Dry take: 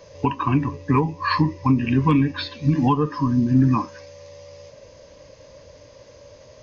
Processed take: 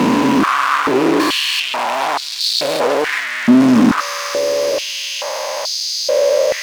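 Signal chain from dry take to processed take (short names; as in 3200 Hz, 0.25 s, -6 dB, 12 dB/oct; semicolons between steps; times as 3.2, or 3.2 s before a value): stepped spectrum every 0.4 s; high shelf 2200 Hz +10.5 dB; fuzz box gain 44 dB, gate -53 dBFS; high shelf 4600 Hz -5.5 dB; stepped high-pass 2.3 Hz 230–4400 Hz; gain -2.5 dB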